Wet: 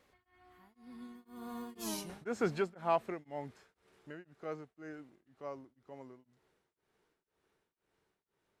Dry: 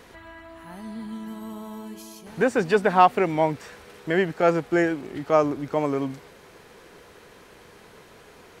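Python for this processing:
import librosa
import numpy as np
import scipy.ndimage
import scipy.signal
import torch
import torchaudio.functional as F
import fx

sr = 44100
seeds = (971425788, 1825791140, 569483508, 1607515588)

y = fx.doppler_pass(x, sr, speed_mps=32, closest_m=2.6, pass_at_s=1.87)
y = y * np.abs(np.cos(np.pi * 2.0 * np.arange(len(y)) / sr))
y = F.gain(torch.from_numpy(y), 7.5).numpy()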